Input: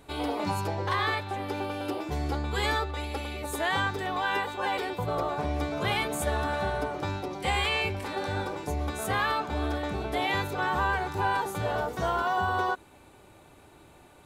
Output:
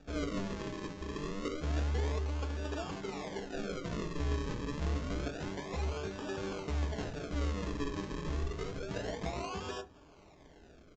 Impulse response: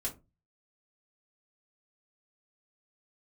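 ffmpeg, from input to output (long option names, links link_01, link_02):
-filter_complex "[0:a]highshelf=frequency=2800:gain=-6.5,bandreject=frequency=324.9:width_type=h:width=4,bandreject=frequency=649.8:width_type=h:width=4,bandreject=frequency=974.7:width_type=h:width=4,bandreject=frequency=1299.6:width_type=h:width=4,acrossover=split=520[link_01][link_02];[link_02]acompressor=threshold=-41dB:ratio=8[link_03];[link_01][link_03]amix=inputs=2:normalize=0,atempo=1.3,acrusher=samples=42:mix=1:aa=0.000001:lfo=1:lforange=42:lforate=0.28,asoftclip=type=tanh:threshold=-22dB,aresample=16000,aresample=44100,asplit=2[link_04][link_05];[1:a]atrim=start_sample=2205[link_06];[link_05][link_06]afir=irnorm=-1:irlink=0,volume=-4.5dB[link_07];[link_04][link_07]amix=inputs=2:normalize=0,volume=-6dB"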